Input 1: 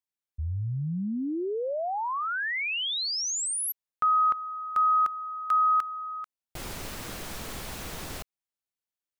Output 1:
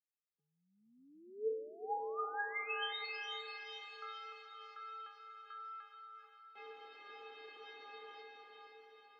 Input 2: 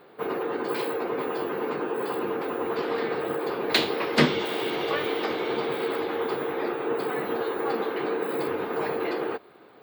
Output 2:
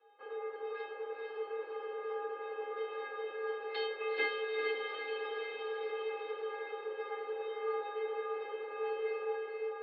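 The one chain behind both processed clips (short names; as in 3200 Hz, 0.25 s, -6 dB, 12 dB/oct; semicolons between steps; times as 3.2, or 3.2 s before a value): metallic resonator 370 Hz, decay 0.71 s, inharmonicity 0.008; diffused feedback echo 0.454 s, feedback 57%, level -3.5 dB; mistuned SSB +70 Hz 200–3600 Hz; gain +6.5 dB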